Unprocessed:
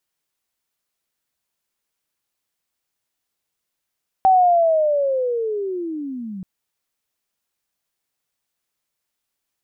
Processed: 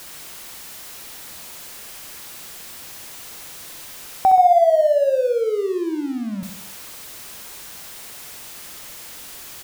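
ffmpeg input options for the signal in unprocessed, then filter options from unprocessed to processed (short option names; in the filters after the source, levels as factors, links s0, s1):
-f lavfi -i "aevalsrc='pow(10,(-9.5-19*t/2.18)/20)*sin(2*PI*(770*t-590*t*t/(2*2.18)))':d=2.18:s=44100"
-filter_complex "[0:a]aeval=exprs='val(0)+0.5*0.0237*sgn(val(0))':c=same,asplit=2[s0][s1];[s1]aecho=0:1:65|130|195|260|325|390:0.447|0.237|0.125|0.0665|0.0352|0.0187[s2];[s0][s2]amix=inputs=2:normalize=0"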